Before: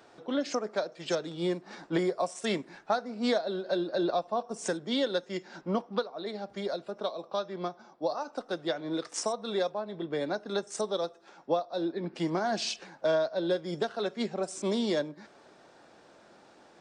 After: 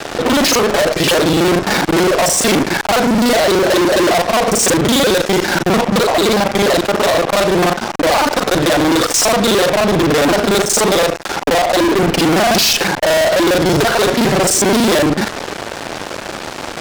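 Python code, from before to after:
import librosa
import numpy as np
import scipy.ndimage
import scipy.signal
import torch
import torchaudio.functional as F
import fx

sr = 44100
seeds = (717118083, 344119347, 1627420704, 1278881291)

y = fx.local_reverse(x, sr, ms=37.0)
y = fx.fuzz(y, sr, gain_db=52.0, gate_db=-56.0)
y = y * 10.0 ** (2.0 / 20.0)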